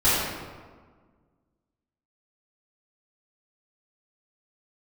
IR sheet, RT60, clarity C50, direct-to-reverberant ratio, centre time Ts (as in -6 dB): 1.5 s, -2.5 dB, -13.5 dB, 105 ms